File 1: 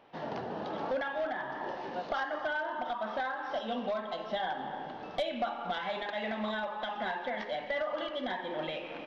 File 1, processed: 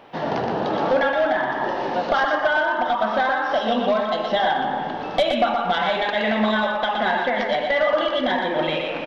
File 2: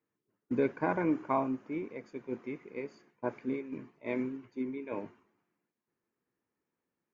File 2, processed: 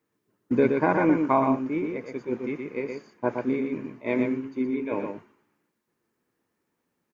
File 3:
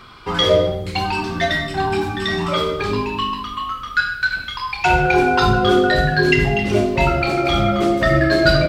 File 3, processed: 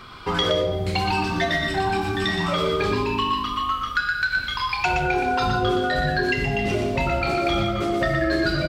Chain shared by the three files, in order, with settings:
compressor, threshold -20 dBFS; on a send: echo 0.12 s -5 dB; on the sum: normalise peaks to -9 dBFS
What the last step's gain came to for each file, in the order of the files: +13.0, +8.0, 0.0 dB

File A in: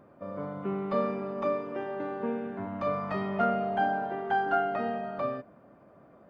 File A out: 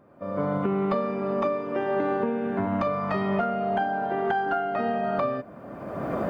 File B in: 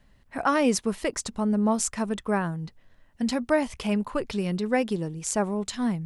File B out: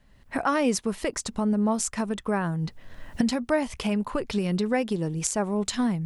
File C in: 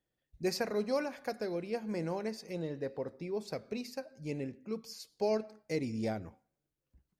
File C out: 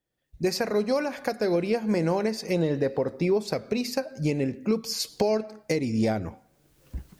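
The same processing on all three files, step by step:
recorder AGC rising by 28 dB/s; match loudness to -27 LUFS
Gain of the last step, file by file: -1.5, -1.5, 0.0 dB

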